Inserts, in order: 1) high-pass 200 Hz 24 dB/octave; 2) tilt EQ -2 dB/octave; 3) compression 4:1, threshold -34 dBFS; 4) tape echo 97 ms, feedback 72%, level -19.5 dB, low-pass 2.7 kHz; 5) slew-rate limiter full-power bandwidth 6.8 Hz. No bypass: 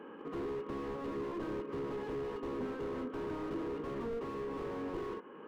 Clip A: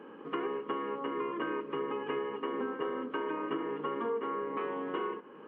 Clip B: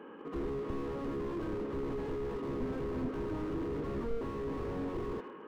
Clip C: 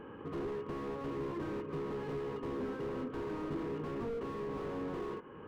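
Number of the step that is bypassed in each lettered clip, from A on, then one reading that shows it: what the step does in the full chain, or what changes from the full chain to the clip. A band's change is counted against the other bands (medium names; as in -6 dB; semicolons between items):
5, crest factor change +3.5 dB; 3, mean gain reduction 9.0 dB; 1, 125 Hz band +4.0 dB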